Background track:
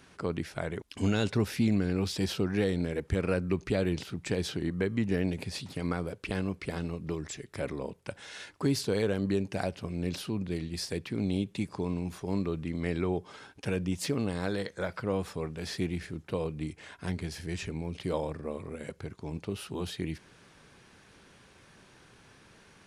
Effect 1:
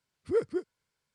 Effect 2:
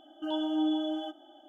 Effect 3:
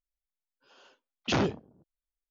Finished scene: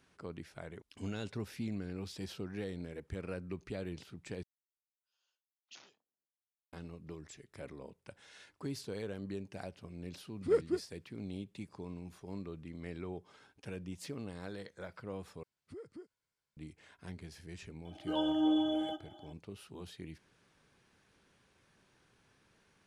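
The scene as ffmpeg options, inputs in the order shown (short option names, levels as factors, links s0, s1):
-filter_complex "[1:a]asplit=2[s0][s1];[0:a]volume=0.237[s2];[3:a]aderivative[s3];[s1]acompressor=threshold=0.0141:ratio=6:attack=3.2:release=140:knee=1:detection=peak[s4];[s2]asplit=3[s5][s6][s7];[s5]atrim=end=4.434[s8];[s3]atrim=end=2.3,asetpts=PTS-STARTPTS,volume=0.158[s9];[s6]atrim=start=6.726:end=15.434[s10];[s4]atrim=end=1.14,asetpts=PTS-STARTPTS,volume=0.376[s11];[s7]atrim=start=16.566[s12];[s0]atrim=end=1.14,asetpts=PTS-STARTPTS,volume=0.794,afade=t=in:d=0.004:c=hsin,afade=t=out:st=1.136:d=0.004:c=hsin,adelay=10170[s13];[2:a]atrim=end=1.48,asetpts=PTS-STARTPTS,volume=0.891,afade=t=in:d=0.004:c=hsin,afade=t=out:st=1.476:d=0.004:c=hsin,adelay=17850[s14];[s8][s9]acrossfade=d=0.004:c1=hsin:c2=hsin[s15];[s15][s10]acrossfade=d=0.004:c1=hsin:c2=hsin[s16];[s16][s11]acrossfade=d=0.004:c1=hsin:c2=hsin[s17];[s17][s12]acrossfade=d=0.004:c1=hsin:c2=hsin[s18];[s18][s13][s14]amix=inputs=3:normalize=0"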